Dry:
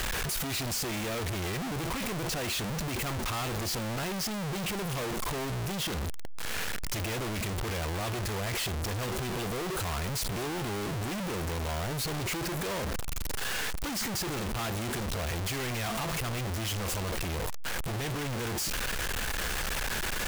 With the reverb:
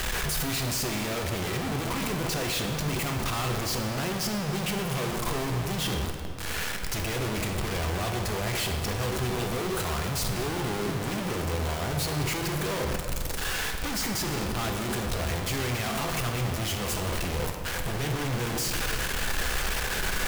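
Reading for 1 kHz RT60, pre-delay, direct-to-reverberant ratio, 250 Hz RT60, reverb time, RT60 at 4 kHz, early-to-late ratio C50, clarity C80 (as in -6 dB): 2.3 s, 3 ms, 3.5 dB, 2.6 s, 2.4 s, 1.5 s, 5.0 dB, 6.0 dB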